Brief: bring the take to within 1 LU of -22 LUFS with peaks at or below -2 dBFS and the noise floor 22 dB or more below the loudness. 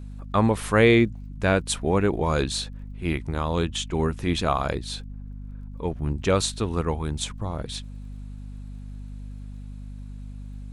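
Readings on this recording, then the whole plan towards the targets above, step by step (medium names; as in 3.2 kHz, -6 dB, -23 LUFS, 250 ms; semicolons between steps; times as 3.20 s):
tick rate 27 per s; hum 50 Hz; highest harmonic 250 Hz; hum level -34 dBFS; loudness -25.0 LUFS; peak level -5.5 dBFS; loudness target -22.0 LUFS
-> de-click; de-hum 50 Hz, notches 5; trim +3 dB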